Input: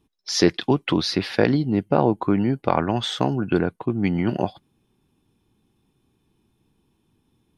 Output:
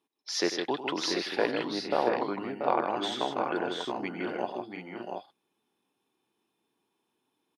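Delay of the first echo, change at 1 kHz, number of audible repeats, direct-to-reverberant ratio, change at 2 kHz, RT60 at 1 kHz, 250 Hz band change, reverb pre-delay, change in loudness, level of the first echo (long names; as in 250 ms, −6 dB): 97 ms, −4.0 dB, 4, no reverb audible, −4.5 dB, no reverb audible, −13.0 dB, no reverb audible, −9.0 dB, −12.5 dB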